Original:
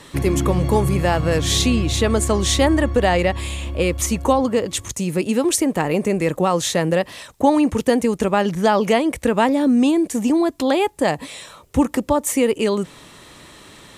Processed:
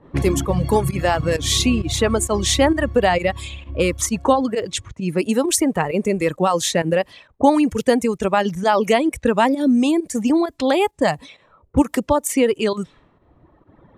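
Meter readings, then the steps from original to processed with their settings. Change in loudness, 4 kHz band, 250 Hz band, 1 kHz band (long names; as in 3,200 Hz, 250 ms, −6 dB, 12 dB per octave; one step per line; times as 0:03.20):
0.0 dB, +0.5 dB, −0.5 dB, +1.0 dB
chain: low-pass that shuts in the quiet parts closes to 640 Hz, open at −16.5 dBFS
fake sidechain pumping 132 BPM, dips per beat 1, −10 dB, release 79 ms
reverb reduction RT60 1.7 s
level +1.5 dB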